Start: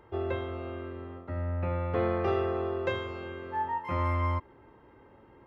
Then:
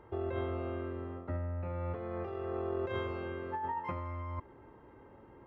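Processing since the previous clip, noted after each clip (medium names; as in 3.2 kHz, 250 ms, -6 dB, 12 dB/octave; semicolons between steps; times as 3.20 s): treble shelf 3.1 kHz -11 dB; compressor with a negative ratio -34 dBFS, ratio -1; trim -2.5 dB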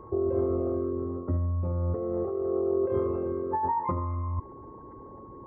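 resonances exaggerated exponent 2; whistle 1.1 kHz -57 dBFS; trim +9 dB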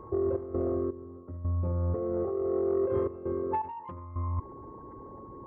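saturation -18.5 dBFS, distortion -24 dB; trance gate "xx.xx...xxxxxxx" 83 bpm -12 dB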